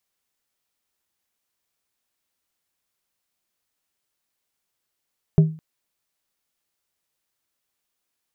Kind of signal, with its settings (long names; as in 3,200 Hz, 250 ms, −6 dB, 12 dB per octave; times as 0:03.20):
struck glass plate, length 0.21 s, lowest mode 158 Hz, modes 3, decay 0.36 s, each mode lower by 11 dB, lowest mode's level −7 dB